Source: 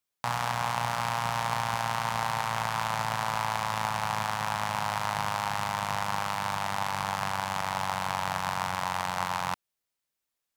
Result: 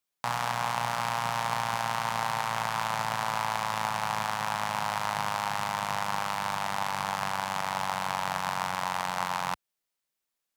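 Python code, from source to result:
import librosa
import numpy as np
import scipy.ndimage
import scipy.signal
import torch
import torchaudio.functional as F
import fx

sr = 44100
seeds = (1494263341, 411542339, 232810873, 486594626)

y = fx.peak_eq(x, sr, hz=76.0, db=-13.5, octaves=0.73)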